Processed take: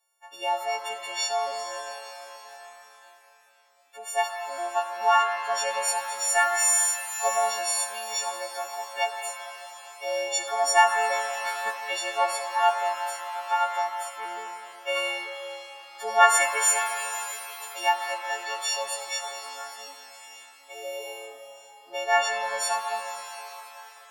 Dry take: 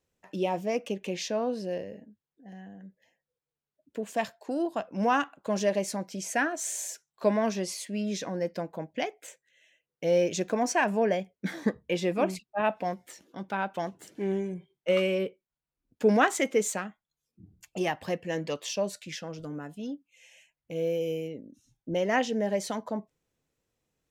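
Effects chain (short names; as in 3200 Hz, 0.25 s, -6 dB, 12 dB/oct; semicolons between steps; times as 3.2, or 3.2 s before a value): frequency quantiser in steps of 4 st; ladder high-pass 740 Hz, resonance 65%; shimmer reverb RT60 3.7 s, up +7 st, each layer -8 dB, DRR 5 dB; gain +8.5 dB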